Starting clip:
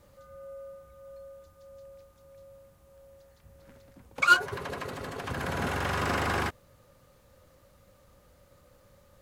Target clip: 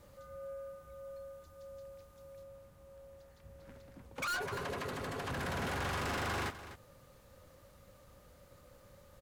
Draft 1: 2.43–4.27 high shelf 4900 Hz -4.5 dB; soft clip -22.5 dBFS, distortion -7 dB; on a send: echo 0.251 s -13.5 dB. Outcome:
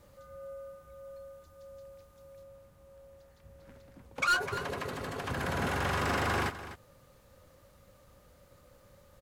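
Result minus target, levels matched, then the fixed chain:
soft clip: distortion -6 dB
2.43–4.27 high shelf 4900 Hz -4.5 dB; soft clip -34 dBFS, distortion -2 dB; on a send: echo 0.251 s -13.5 dB

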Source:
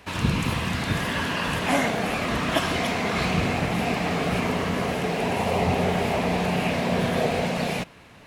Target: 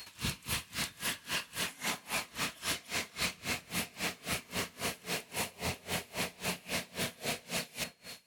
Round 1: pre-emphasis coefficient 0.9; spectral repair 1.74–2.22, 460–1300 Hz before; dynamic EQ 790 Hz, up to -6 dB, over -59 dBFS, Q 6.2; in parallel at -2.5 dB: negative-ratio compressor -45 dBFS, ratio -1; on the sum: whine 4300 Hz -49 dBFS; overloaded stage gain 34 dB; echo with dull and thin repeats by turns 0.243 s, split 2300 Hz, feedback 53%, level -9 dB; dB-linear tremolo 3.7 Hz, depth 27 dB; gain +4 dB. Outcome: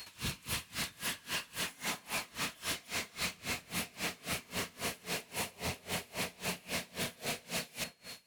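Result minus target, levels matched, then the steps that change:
overloaded stage: distortion +19 dB
change: overloaded stage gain 25.5 dB

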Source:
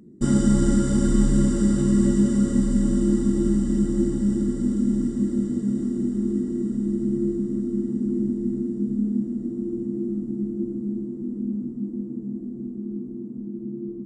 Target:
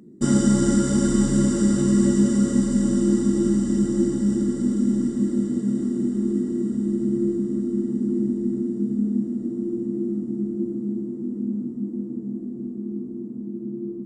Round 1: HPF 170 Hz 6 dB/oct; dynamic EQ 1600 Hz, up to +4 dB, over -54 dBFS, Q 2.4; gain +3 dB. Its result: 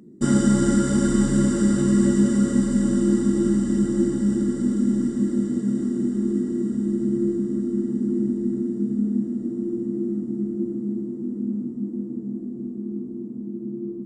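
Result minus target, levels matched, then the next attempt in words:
2000 Hz band +3.0 dB
HPF 170 Hz 6 dB/oct; dynamic EQ 6000 Hz, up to +4 dB, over -54 dBFS, Q 2.4; gain +3 dB

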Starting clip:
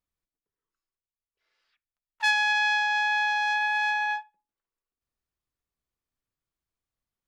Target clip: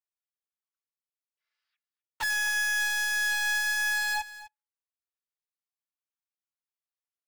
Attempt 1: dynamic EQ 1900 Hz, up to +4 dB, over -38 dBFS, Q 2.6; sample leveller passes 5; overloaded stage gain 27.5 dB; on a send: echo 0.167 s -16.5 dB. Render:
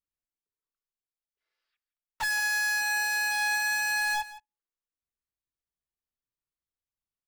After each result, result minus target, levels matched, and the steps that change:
echo 87 ms early; 1000 Hz band +5.0 dB
change: echo 0.254 s -16.5 dB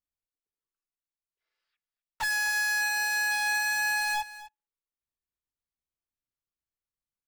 1000 Hz band +5.0 dB
add after dynamic EQ: HPF 920 Hz 12 dB/oct

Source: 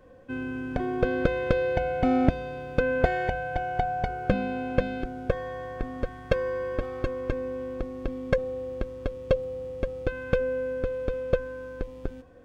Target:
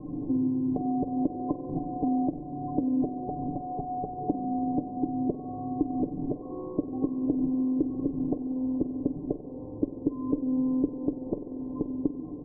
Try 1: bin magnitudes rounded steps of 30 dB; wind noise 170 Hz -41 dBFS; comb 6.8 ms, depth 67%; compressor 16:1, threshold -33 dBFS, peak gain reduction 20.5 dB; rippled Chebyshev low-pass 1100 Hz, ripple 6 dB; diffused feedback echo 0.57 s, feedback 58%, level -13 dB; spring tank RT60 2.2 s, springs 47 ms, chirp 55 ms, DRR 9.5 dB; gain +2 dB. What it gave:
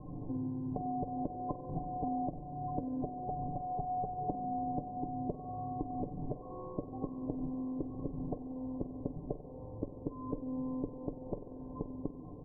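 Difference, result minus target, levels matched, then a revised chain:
250 Hz band -2.5 dB
bin magnitudes rounded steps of 30 dB; wind noise 170 Hz -41 dBFS; comb 6.8 ms, depth 67%; compressor 16:1, threshold -33 dBFS, peak gain reduction 20.5 dB; rippled Chebyshev low-pass 1100 Hz, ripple 6 dB; bell 300 Hz +14 dB 1.1 oct; diffused feedback echo 0.57 s, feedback 58%, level -13 dB; spring tank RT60 2.2 s, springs 47 ms, chirp 55 ms, DRR 9.5 dB; gain +2 dB

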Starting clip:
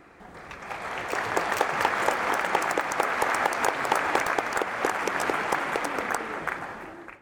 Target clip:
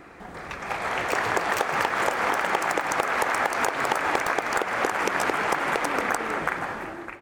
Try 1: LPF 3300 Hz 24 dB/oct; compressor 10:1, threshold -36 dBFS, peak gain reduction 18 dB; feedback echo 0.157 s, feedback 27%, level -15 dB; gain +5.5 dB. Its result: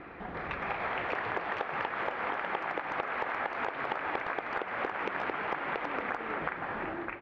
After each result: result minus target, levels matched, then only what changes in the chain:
compressor: peak gain reduction +9.5 dB; 4000 Hz band -3.0 dB
change: compressor 10:1, threshold -25.5 dBFS, peak gain reduction 9 dB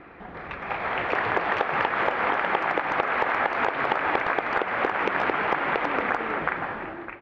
4000 Hz band -3.5 dB
remove: LPF 3300 Hz 24 dB/oct

